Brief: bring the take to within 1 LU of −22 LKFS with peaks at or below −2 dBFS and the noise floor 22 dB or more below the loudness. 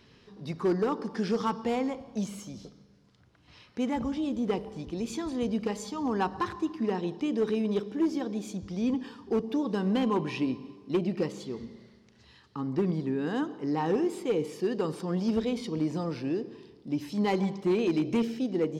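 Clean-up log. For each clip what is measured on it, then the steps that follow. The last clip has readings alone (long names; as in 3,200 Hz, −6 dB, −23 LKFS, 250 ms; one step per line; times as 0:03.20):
integrated loudness −30.5 LKFS; sample peak −19.5 dBFS; target loudness −22.0 LKFS
→ level +8.5 dB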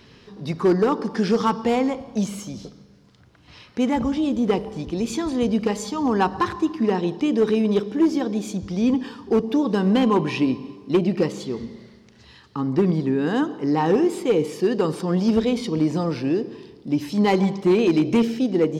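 integrated loudness −22.0 LKFS; sample peak −11.0 dBFS; background noise floor −51 dBFS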